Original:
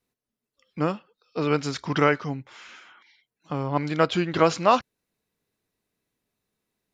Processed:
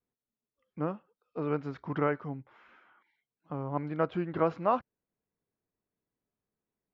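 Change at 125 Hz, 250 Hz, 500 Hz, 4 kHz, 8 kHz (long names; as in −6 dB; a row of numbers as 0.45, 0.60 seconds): −7.5 dB, −7.5 dB, −7.5 dB, below −20 dB, below −30 dB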